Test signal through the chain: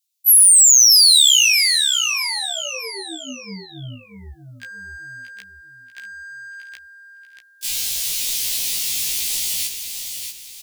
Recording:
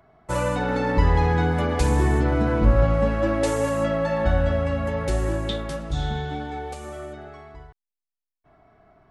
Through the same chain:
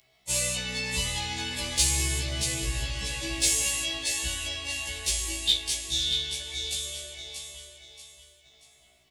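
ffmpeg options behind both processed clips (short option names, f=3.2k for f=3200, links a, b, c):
-af "aecho=1:1:634|1268|1902|2536:0.422|0.148|0.0517|0.0181,aexciter=amount=9.2:drive=9.9:freq=2.3k,afftfilt=real='re*1.73*eq(mod(b,3),0)':imag='im*1.73*eq(mod(b,3),0)':win_size=2048:overlap=0.75,volume=-12dB"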